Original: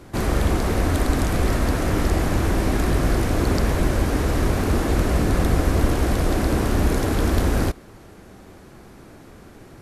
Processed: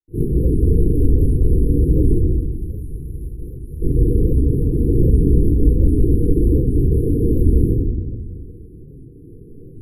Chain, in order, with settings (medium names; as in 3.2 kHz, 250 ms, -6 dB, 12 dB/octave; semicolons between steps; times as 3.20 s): treble shelf 5.2 kHz -11.5 dB; reverb removal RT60 0.99 s; 2.18–3.82 s: amplifier tone stack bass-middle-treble 5-5-5; FFT band-reject 500–9700 Hz; trance gate ".xx.xxxxxxxxxx" 191 bpm -60 dB; simulated room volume 760 m³, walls mixed, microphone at 3.7 m; warped record 78 rpm, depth 160 cents; trim -2 dB